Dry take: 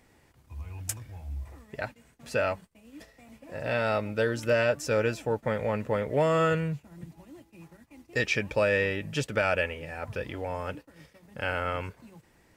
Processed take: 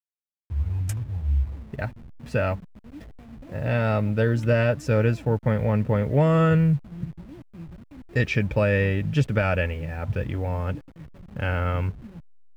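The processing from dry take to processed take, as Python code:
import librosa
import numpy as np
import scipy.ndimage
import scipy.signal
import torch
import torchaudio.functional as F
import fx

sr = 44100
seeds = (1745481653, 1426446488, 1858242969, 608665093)

y = fx.delta_hold(x, sr, step_db=-48.0)
y = fx.bass_treble(y, sr, bass_db=13, treble_db=-8)
y = y * 10.0 ** (1.0 / 20.0)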